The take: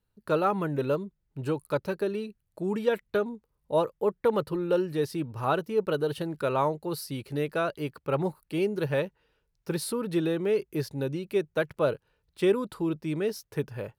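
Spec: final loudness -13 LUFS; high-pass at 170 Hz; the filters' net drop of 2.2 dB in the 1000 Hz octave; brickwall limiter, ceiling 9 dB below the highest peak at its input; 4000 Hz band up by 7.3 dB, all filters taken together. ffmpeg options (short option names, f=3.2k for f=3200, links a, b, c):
-af "highpass=170,equalizer=f=1k:t=o:g=-3.5,equalizer=f=4k:t=o:g=9,volume=19.5dB,alimiter=limit=-1dB:level=0:latency=1"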